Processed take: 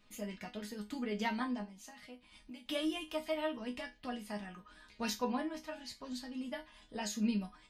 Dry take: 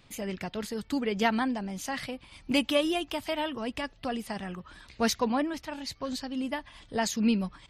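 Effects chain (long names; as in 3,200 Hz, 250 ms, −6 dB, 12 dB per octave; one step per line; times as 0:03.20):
0:01.63–0:02.66: downward compressor 12 to 1, threshold −41 dBFS, peak gain reduction 20.5 dB
resonators tuned to a chord G#3 minor, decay 0.22 s
level +7 dB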